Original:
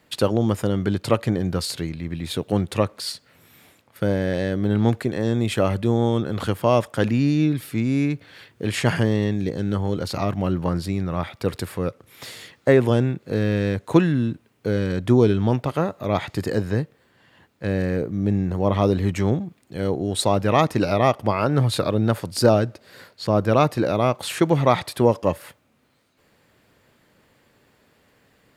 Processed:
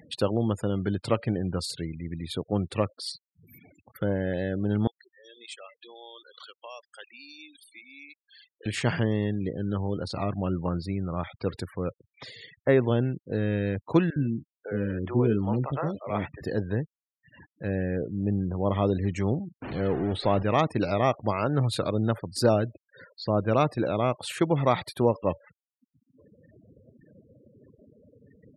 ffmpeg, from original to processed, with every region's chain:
-filter_complex "[0:a]asettb=1/sr,asplit=3[a][b][c];[a]atrim=end=4.874[d];[b]atrim=start=4.87:end=8.66,asetpts=PTS-STARTPTS,afade=t=in:d=0.004:c=qsin,afade=t=out:st=3.786:d=0.004:c=qsin,highpass=380,lowpass=6.9k,aderivative[e];[c]atrim=start=8.656[f];[d][e]acrossfade=d=0.004:c1=hsin:c2=qsin[g];[g][f]acrossfade=d=0.004:c1=qsin:c2=hsin,asettb=1/sr,asplit=3[h][i][j];[h]atrim=end=14.104[k];[i]atrim=start=14.1:end=16.42,asetpts=PTS-STARTPTS,afade=t=in:d=0.004:c=qsin,afade=t=out:st=2.316:d=0.004:c=qsin,asplit=2[l][m];[m]adelay=14,volume=-10.5dB[n];[l][n]amix=inputs=2:normalize=0,atrim=end_sample=102312,acrossover=split=480|3400[o][p][q];[o]adelay=60[r];[q]adelay=660[s];[r][p][s]amix=inputs=3:normalize=0,atrim=end_sample=102312[t];[j]atrim=start=16.416[u];[k][t]acrossfade=d=0.004:c1=hsin:c2=qsin[v];[v][u]acrossfade=d=0.004:c1=qsin:c2=hsin,asettb=1/sr,asplit=3[w][x][y];[w]atrim=end=19.624[z];[x]atrim=start=19.62:end=20.43,asetpts=PTS-STARTPTS,afade=t=in:d=0.004:c=qsin,afade=t=out:st=0.806:d=0.004:c=qsin,aeval=exprs='val(0)+0.5*0.0631*sgn(val(0))':c=same,acrossover=split=3400[aa][ab];[ab]acompressor=threshold=-37dB:ratio=4:attack=1:release=60[ac];[aa][ac]amix=inputs=2:normalize=0,lowpass=7.7k[ad];[y]atrim=start=20.426[ae];[z][ad]acrossfade=d=0.004:c1=hsin:c2=qsin[af];[af][ae]acrossfade=d=0.004:c1=qsin:c2=hsin,acompressor=mode=upward:threshold=-31dB:ratio=2.5,afftfilt=real='re*gte(hypot(re,im),0.02)':imag='im*gte(hypot(re,im),0.02)':win_size=1024:overlap=0.75,volume=-5.5dB"

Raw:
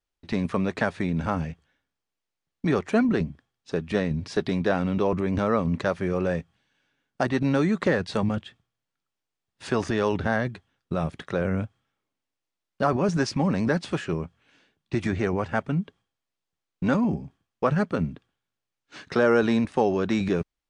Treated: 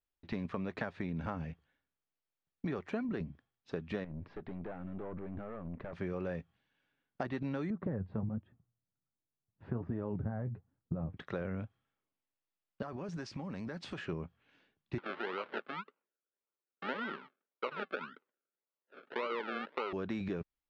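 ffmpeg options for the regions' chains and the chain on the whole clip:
-filter_complex "[0:a]asettb=1/sr,asplit=3[a][b][c];[a]atrim=end=4.044[d];[b]atrim=start=4.04:end=5.93,asetpts=PTS-STARTPTS,afade=t=in:d=0.004:c=qsin,afade=t=out:st=1.886:d=0.004:c=qsin,acompressor=threshold=-26dB:ratio=5:attack=3.2:release=140:knee=1:detection=peak,aeval=exprs='(tanh(31.6*val(0)+0.6)-tanh(0.6))/31.6':c=same,lowpass=1.8k[e];[c]atrim=start=5.926[f];[d][e]acrossfade=d=0.004:c1=hsin:c2=qsin[g];[g][f]acrossfade=d=0.004:c1=qsin:c2=hsin,asettb=1/sr,asplit=3[h][i][j];[h]atrim=end=7.704[k];[i]atrim=start=7.7:end=11.17,asetpts=PTS-STARTPTS,afade=t=in:d=0.004:c=qsin,afade=t=out:st=3.466:d=0.004:c=qsin,lowpass=1.1k,equalizer=f=110:t=o:w=2.6:g=14,flanger=delay=3.1:depth=7.6:regen=48:speed=1.3:shape=sinusoidal[l];[j]atrim=start=11.166[m];[k][l]acrossfade=d=0.004:c1=hsin:c2=qsin[n];[n][m]acrossfade=d=0.004:c1=qsin:c2=hsin,asettb=1/sr,asplit=3[o][p][q];[o]atrim=end=12.824[r];[p]atrim=start=12.82:end=13.98,asetpts=PTS-STARTPTS,afade=t=in:d=0.004:c=qsin,afade=t=out:st=1.156:d=0.004:c=qsin,highshelf=f=5.4k:g=12,acompressor=threshold=-29dB:ratio=16:attack=3.2:release=140:knee=1:detection=peak[s];[q]atrim=start=13.976[t];[r][s]acrossfade=d=0.004:c1=hsin:c2=qsin[u];[u][t]acrossfade=d=0.004:c1=qsin:c2=hsin,asettb=1/sr,asplit=3[v][w][x];[v]atrim=end=14.984[y];[w]atrim=start=14.98:end=19.93,asetpts=PTS-STARTPTS,afade=t=in:d=0.004:c=qsin,afade=t=out:st=4.946:d=0.004:c=qsin,acrusher=samples=36:mix=1:aa=0.000001:lfo=1:lforange=21.6:lforate=1.8,highpass=f=300:w=0.5412,highpass=f=300:w=1.3066,equalizer=f=300:t=q:w=4:g=-8,equalizer=f=730:t=q:w=4:g=-9,equalizer=f=1.4k:t=q:w=4:g=8,lowpass=f=3.7k:w=0.5412,lowpass=f=3.7k:w=1.3066[z];[x]atrim=start=19.926[aa];[y][z]acrossfade=d=0.004:c1=hsin:c2=qsin[ab];[ab][aa]acrossfade=d=0.004:c1=qsin:c2=hsin,lowpass=3.7k,acompressor=threshold=-26dB:ratio=6,volume=-7.5dB"

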